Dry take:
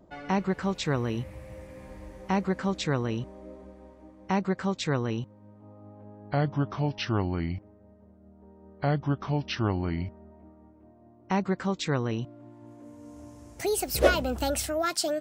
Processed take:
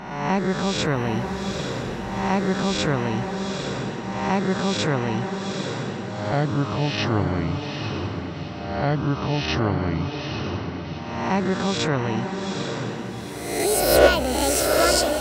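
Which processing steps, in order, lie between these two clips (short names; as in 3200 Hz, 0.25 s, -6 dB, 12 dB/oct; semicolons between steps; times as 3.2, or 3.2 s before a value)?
spectral swells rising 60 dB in 1.04 s; diffused feedback echo 0.842 s, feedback 43%, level -5 dB; gain +3 dB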